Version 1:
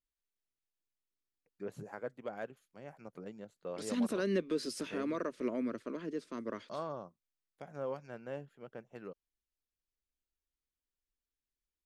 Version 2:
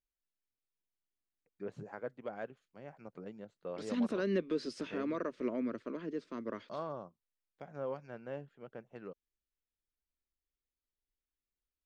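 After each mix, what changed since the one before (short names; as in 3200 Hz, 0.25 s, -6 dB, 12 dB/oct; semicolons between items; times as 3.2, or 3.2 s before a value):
master: add air absorption 110 m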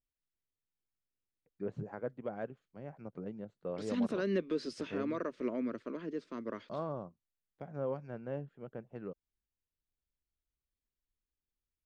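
first voice: add tilt -2.5 dB/oct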